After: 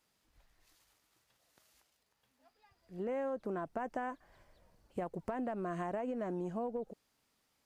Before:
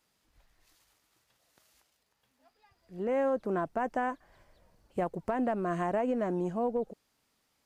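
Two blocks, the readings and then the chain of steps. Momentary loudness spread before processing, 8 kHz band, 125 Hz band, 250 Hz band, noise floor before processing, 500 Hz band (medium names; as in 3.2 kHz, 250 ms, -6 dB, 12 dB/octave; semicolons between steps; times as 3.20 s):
8 LU, no reading, -6.0 dB, -7.0 dB, -76 dBFS, -7.5 dB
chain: compression, threshold -32 dBFS, peak gain reduction 6.5 dB; trim -2.5 dB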